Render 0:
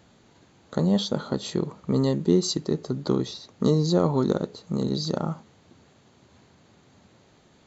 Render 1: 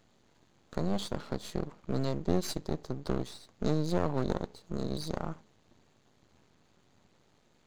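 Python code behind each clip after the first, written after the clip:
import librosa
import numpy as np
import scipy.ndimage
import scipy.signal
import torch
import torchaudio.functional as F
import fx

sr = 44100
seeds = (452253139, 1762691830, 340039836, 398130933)

y = np.maximum(x, 0.0)
y = y * 10.0 ** (-5.5 / 20.0)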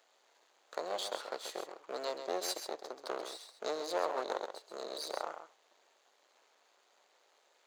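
y = scipy.signal.sosfilt(scipy.signal.butter(4, 500.0, 'highpass', fs=sr, output='sos'), x)
y = y + 10.0 ** (-8.5 / 20.0) * np.pad(y, (int(133 * sr / 1000.0), 0))[:len(y)]
y = y * 10.0 ** (1.0 / 20.0)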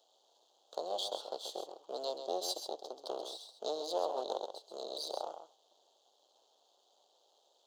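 y = fx.curve_eq(x, sr, hz=(180.0, 790.0, 2200.0, 3200.0, 8500.0), db=(0, 6, -25, 8, 1))
y = y * 10.0 ** (-4.5 / 20.0)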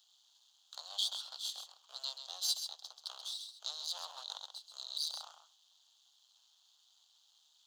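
y = scipy.signal.sosfilt(scipy.signal.butter(4, 1400.0, 'highpass', fs=sr, output='sos'), x)
y = y * 10.0 ** (5.0 / 20.0)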